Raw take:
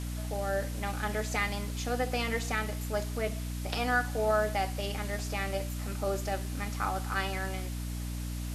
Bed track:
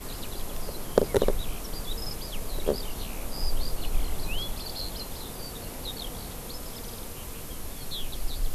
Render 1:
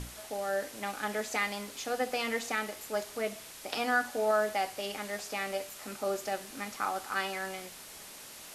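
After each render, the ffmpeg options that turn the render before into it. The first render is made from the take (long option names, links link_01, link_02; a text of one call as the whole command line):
ffmpeg -i in.wav -af "bandreject=frequency=60:width_type=h:width=6,bandreject=frequency=120:width_type=h:width=6,bandreject=frequency=180:width_type=h:width=6,bandreject=frequency=240:width_type=h:width=6,bandreject=frequency=300:width_type=h:width=6" out.wav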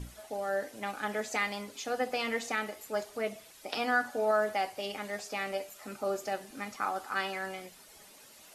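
ffmpeg -i in.wav -af "afftdn=noise_reduction=10:noise_floor=-48" out.wav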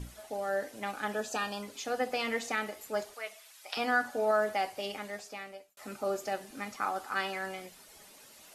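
ffmpeg -i in.wav -filter_complex "[0:a]asettb=1/sr,asplit=3[link_01][link_02][link_03];[link_01]atrim=end=1.134[link_04];[link_02]atrim=start=1.13:end=1.63,asetpts=PTS-STARTPTS,afade=type=in:duration=0.004:curve=qsin,afade=type=out:start_time=0.496:duration=0.004:curve=qsin,asuperstop=centerf=2100:order=8:qfactor=4[link_05];[link_03]atrim=start=1.626[link_06];[link_04][link_05]acrossfade=duration=0.004:curve1=hsin:curve2=qsin[link_07];[link_07][link_06]acrossfade=duration=0.004:curve1=qsin:curve2=hsin,asettb=1/sr,asplit=3[link_08][link_09][link_10];[link_08]atrim=end=3.144[link_11];[link_09]atrim=start=3.14:end=3.77,asetpts=PTS-STARTPTS,afade=type=in:duration=0.004:curve=qsin,afade=type=out:start_time=0.626:duration=0.004:curve=qsin,highpass=1000[link_12];[link_10]atrim=start=3.766[link_13];[link_11][link_12]acrossfade=duration=0.004:curve1=hsin:curve2=qsin[link_14];[link_14][link_13]acrossfade=duration=0.004:curve1=qsin:curve2=hsin,asplit=2[link_15][link_16];[link_15]atrim=end=5.77,asetpts=PTS-STARTPTS,afade=type=out:start_time=4.86:duration=0.91[link_17];[link_16]atrim=start=5.77,asetpts=PTS-STARTPTS,afade=type=in:duration=0.004:curve=hsin[link_18];[link_17][link_18]concat=n=2:v=0:a=1" out.wav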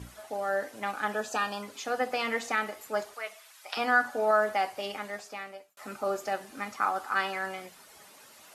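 ffmpeg -i in.wav -af "highpass=64,equalizer=frequency=1200:width_type=o:width=1.5:gain=6" out.wav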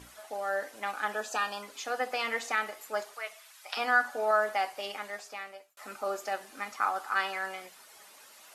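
ffmpeg -i in.wav -af "equalizer=frequency=100:width=0.37:gain=-13" out.wav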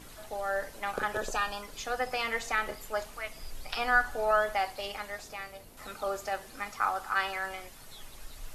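ffmpeg -i in.wav -i bed.wav -filter_complex "[1:a]volume=-15.5dB[link_01];[0:a][link_01]amix=inputs=2:normalize=0" out.wav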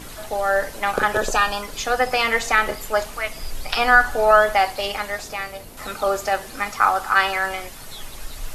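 ffmpeg -i in.wav -af "volume=12dB,alimiter=limit=-2dB:level=0:latency=1" out.wav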